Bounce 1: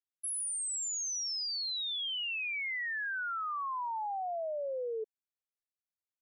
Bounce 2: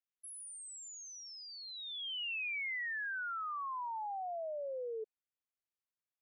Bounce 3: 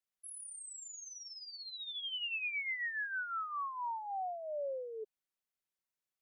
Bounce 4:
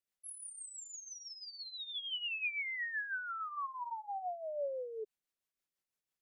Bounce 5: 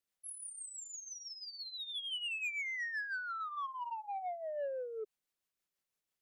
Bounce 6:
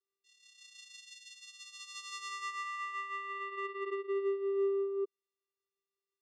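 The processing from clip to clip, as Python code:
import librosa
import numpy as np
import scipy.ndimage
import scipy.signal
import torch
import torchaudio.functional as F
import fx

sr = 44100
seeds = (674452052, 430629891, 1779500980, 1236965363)

y1 = fx.high_shelf_res(x, sr, hz=3600.0, db=-7.5, q=1.5)
y1 = F.gain(torch.from_numpy(y1), -4.5).numpy()
y2 = y1 + 0.42 * np.pad(y1, (int(5.3 * sr / 1000.0), 0))[:len(y1)]
y3 = fx.rotary(y2, sr, hz=6.0)
y3 = F.gain(torch.from_numpy(y3), 2.5).numpy()
y4 = 10.0 ** (-34.5 / 20.0) * np.tanh(y3 / 10.0 ** (-34.5 / 20.0))
y4 = F.gain(torch.from_numpy(y4), 1.5).numpy()
y5 = fx.vocoder(y4, sr, bands=4, carrier='square', carrier_hz=394.0)
y5 = F.gain(torch.from_numpy(y5), 4.0).numpy()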